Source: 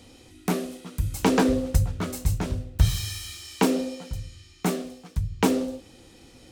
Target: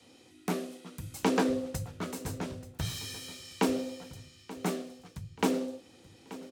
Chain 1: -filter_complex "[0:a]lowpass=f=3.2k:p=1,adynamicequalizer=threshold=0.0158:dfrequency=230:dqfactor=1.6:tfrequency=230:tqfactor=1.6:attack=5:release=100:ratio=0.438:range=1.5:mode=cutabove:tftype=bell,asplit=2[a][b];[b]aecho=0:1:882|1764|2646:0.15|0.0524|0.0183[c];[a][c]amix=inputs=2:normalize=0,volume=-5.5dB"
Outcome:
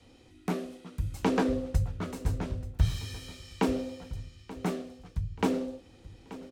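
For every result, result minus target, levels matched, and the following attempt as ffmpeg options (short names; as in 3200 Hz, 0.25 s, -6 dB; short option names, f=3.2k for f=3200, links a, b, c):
8000 Hz band -7.0 dB; 125 Hz band +6.0 dB
-filter_complex "[0:a]lowpass=f=9.8k:p=1,adynamicequalizer=threshold=0.0158:dfrequency=230:dqfactor=1.6:tfrequency=230:tqfactor=1.6:attack=5:release=100:ratio=0.438:range=1.5:mode=cutabove:tftype=bell,asplit=2[a][b];[b]aecho=0:1:882|1764|2646:0.15|0.0524|0.0183[c];[a][c]amix=inputs=2:normalize=0,volume=-5.5dB"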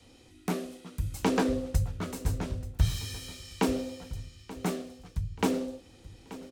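125 Hz band +6.0 dB
-filter_complex "[0:a]lowpass=f=9.8k:p=1,adynamicequalizer=threshold=0.0158:dfrequency=230:dqfactor=1.6:tfrequency=230:tqfactor=1.6:attack=5:release=100:ratio=0.438:range=1.5:mode=cutabove:tftype=bell,highpass=160,asplit=2[a][b];[b]aecho=0:1:882|1764|2646:0.15|0.0524|0.0183[c];[a][c]amix=inputs=2:normalize=0,volume=-5.5dB"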